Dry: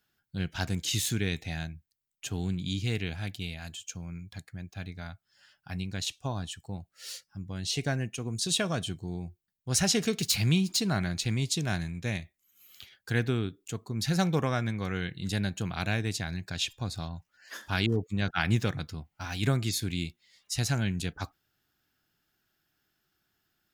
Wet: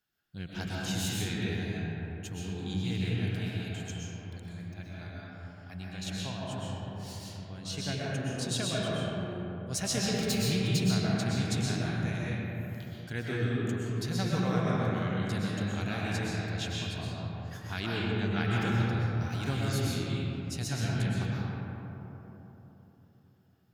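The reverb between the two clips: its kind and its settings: digital reverb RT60 3.8 s, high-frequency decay 0.35×, pre-delay 85 ms, DRR -6 dB; gain -8 dB

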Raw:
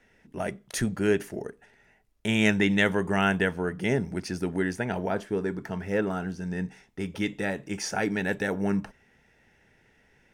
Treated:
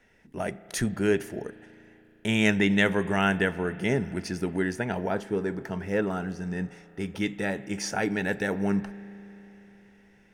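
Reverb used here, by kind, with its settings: spring tank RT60 3.7 s, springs 35 ms, chirp 45 ms, DRR 16.5 dB

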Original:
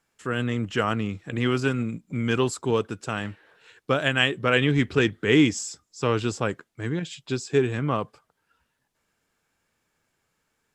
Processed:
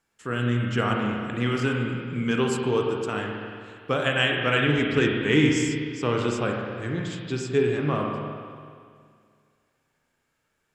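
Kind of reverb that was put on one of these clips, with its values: spring tank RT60 2.1 s, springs 33/47 ms, chirp 30 ms, DRR 0 dB; gain -2.5 dB

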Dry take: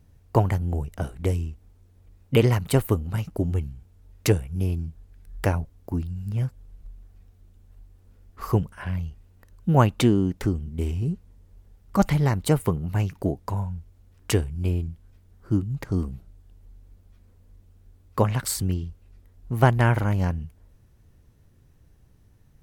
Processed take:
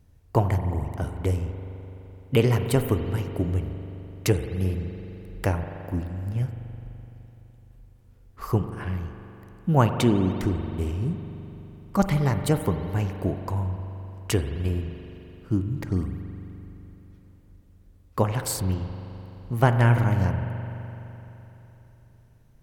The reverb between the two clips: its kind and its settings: spring tank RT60 3.5 s, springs 42 ms, chirp 50 ms, DRR 7 dB; gain -1.5 dB

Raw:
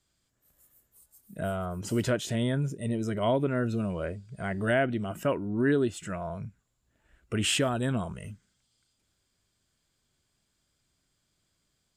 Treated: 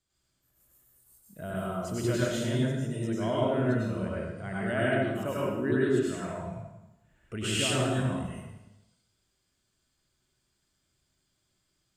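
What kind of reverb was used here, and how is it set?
plate-style reverb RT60 0.96 s, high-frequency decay 0.9×, pre-delay 85 ms, DRR -6.5 dB; gain -7.5 dB

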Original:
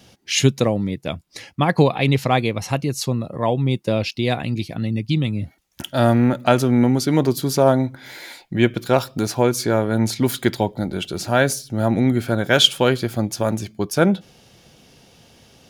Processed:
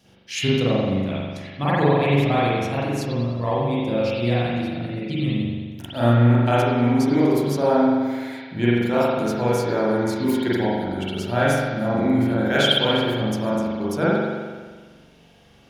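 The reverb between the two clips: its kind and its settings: spring tank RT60 1.5 s, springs 42 ms, chirp 60 ms, DRR -9 dB; gain -10.5 dB

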